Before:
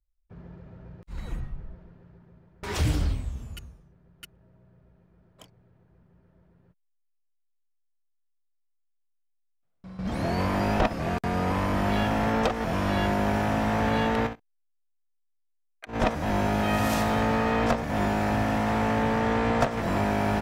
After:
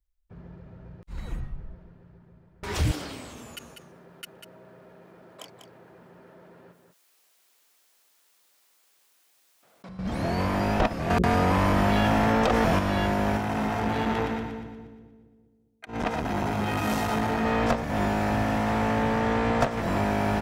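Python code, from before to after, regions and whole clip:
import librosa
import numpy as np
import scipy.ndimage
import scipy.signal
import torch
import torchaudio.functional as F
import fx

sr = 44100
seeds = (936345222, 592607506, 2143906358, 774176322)

y = fx.chain(x, sr, fx.highpass(hz=340.0, slope=12),
    fx.echo_single(ms=195, db=-15.0),
    fx.env_flatten(amount_pct=50), at=(2.91, 9.89))
y = fx.chain(y, sr, fx.hum_notches(base_hz=60, count=9),
    fx.env_flatten(amount_pct=100), at=(11.1, 12.79))
y = fx.chain(y, sr, fx.notch_comb(f0_hz=570.0),
    fx.echo_split(split_hz=440.0, low_ms=202, high_ms=119, feedback_pct=52, wet_db=-5.0),
    fx.transformer_sat(knee_hz=570.0), at=(13.37, 17.45))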